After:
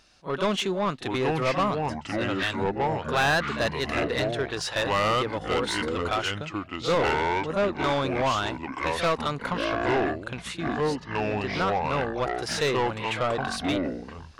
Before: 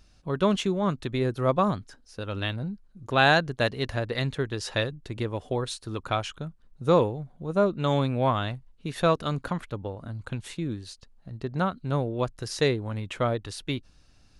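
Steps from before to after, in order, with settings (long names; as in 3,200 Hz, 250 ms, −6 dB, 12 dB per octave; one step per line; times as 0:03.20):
delay with pitch and tempo change per echo 686 ms, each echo −5 semitones, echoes 3
echo ahead of the sound 39 ms −16 dB
mid-hump overdrive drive 22 dB, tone 5,200 Hz, clips at −6.5 dBFS
level −8.5 dB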